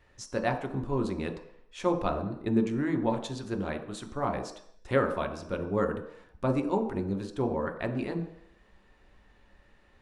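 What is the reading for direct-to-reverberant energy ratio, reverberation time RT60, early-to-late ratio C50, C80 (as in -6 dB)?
3.5 dB, 0.70 s, 9.5 dB, 12.0 dB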